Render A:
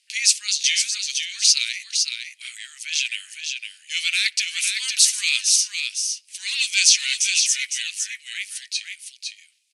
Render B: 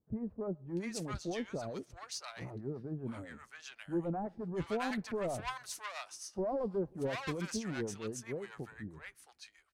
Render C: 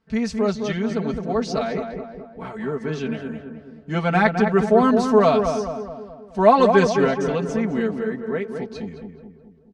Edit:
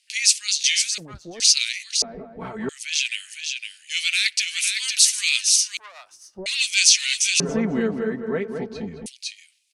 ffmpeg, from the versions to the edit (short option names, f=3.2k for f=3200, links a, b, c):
-filter_complex "[1:a]asplit=2[a][b];[2:a]asplit=2[c][d];[0:a]asplit=5[e][f][g][h][i];[e]atrim=end=0.982[j];[a]atrim=start=0.978:end=1.402[k];[f]atrim=start=1.398:end=2.022[l];[c]atrim=start=2.018:end=2.692[m];[g]atrim=start=2.688:end=5.772[n];[b]atrim=start=5.768:end=6.462[o];[h]atrim=start=6.458:end=7.402[p];[d]atrim=start=7.398:end=9.062[q];[i]atrim=start=9.058[r];[j][k]acrossfade=d=0.004:c1=hsin:c2=hsin[s];[s][l]acrossfade=d=0.004:c1=hsin:c2=hsin[t];[t][m]acrossfade=d=0.004:c1=hsin:c2=hsin[u];[u][n]acrossfade=d=0.004:c1=hsin:c2=hsin[v];[v][o]acrossfade=d=0.004:c1=hsin:c2=hsin[w];[w][p]acrossfade=d=0.004:c1=hsin:c2=hsin[x];[x][q]acrossfade=d=0.004:c1=hsin:c2=hsin[y];[y][r]acrossfade=d=0.004:c1=hsin:c2=hsin"